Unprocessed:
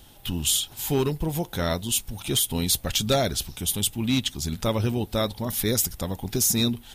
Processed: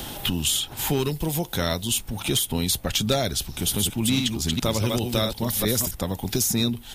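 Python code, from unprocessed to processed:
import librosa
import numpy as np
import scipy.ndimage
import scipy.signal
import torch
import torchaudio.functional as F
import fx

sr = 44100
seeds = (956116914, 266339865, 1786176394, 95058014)

y = fx.reverse_delay(x, sr, ms=211, wet_db=-4.0, at=(3.33, 5.91))
y = fx.band_squash(y, sr, depth_pct=70)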